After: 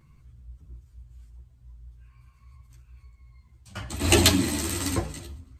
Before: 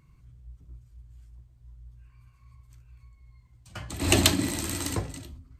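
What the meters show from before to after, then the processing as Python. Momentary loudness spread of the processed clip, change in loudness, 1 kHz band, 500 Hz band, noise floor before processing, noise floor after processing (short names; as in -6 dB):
22 LU, +2.5 dB, +3.0 dB, +3.5 dB, -59 dBFS, -58 dBFS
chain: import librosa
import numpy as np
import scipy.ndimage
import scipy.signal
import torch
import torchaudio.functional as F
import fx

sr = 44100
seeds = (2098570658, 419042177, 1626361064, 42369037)

y = fx.echo_feedback(x, sr, ms=112, feedback_pct=56, wet_db=-23.5)
y = fx.ensemble(y, sr)
y = F.gain(torch.from_numpy(y), 5.5).numpy()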